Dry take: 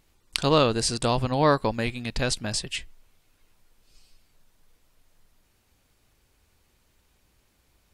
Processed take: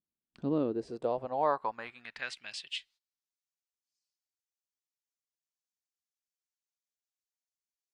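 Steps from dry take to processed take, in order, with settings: band-pass sweep 220 Hz -> 6.3 kHz, 0.35–3.28 s; gate -58 dBFS, range -20 dB; trim -2.5 dB

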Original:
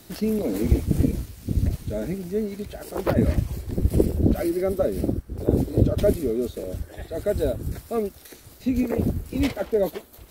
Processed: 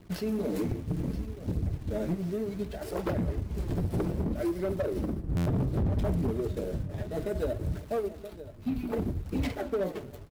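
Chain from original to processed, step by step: 8.19–8.93 s: static phaser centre 1.9 kHz, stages 6; two-slope reverb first 0.25 s, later 1.8 s, from -21 dB, DRR 5 dB; compression 4:1, threshold -25 dBFS, peak gain reduction 12.5 dB; 3.58–4.23 s: waveshaping leveller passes 1; hysteresis with a dead band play -37.5 dBFS; 5.24–6.31 s: resonant low shelf 250 Hz +10 dB, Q 1.5; on a send: delay 974 ms -15 dB; on the sum: flange 0.64 Hz, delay 0.2 ms, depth 8.1 ms, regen -36%; overload inside the chain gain 26.5 dB; buffer glitch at 5.36 s, samples 512, times 8; trim +2 dB

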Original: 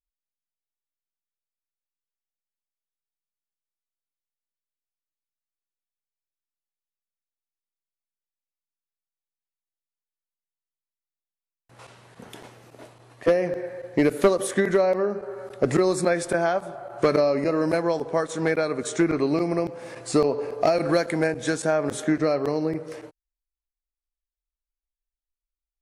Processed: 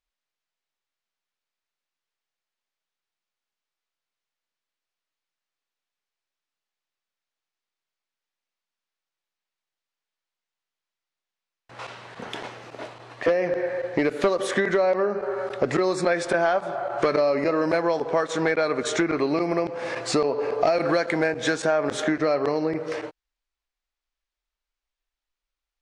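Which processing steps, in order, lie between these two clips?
low-pass 6.1 kHz 12 dB/octave; compression 2.5:1, threshold -30 dBFS, peak gain reduction 11 dB; overdrive pedal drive 9 dB, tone 4.5 kHz, clips at -14.5 dBFS; trim +7 dB

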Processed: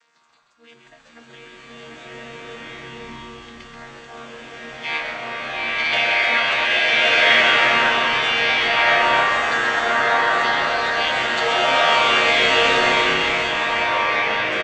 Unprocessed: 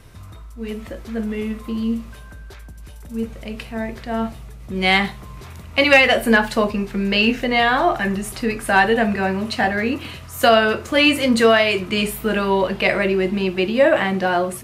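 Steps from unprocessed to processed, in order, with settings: vocoder on a held chord bare fifth, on D#3; high-pass 1.3 kHz 12 dB/octave; treble shelf 6 kHz +6 dB; on a send: frequency-shifting echo 132 ms, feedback 53%, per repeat -100 Hz, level -6.5 dB; on the sum: swelling reverb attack 1400 ms, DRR -11 dB

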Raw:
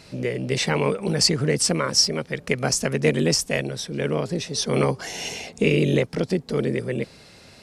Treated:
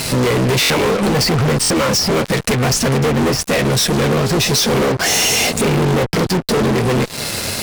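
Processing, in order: low-pass that closes with the level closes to 1.7 kHz, closed at -15.5 dBFS; peaking EQ 11 kHz +13 dB 0.93 oct; compression 3:1, threshold -31 dBFS, peak gain reduction 12.5 dB; flange 0.71 Hz, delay 7.5 ms, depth 3.1 ms, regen -40%; fuzz box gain 49 dB, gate -52 dBFS; buffer glitch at 0.61/1.61 s, samples 1024, times 3

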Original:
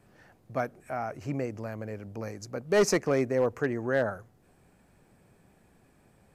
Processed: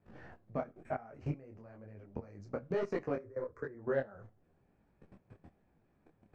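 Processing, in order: compression 5:1, threshold -39 dBFS, peak gain reduction 17.5 dB; 3.18–3.75 s: static phaser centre 760 Hz, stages 6; level held to a coarse grid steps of 20 dB; tape spacing loss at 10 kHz 26 dB; feedback comb 79 Hz, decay 0.27 s, harmonics all, mix 40%; detune thickener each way 36 cents; trim +15.5 dB

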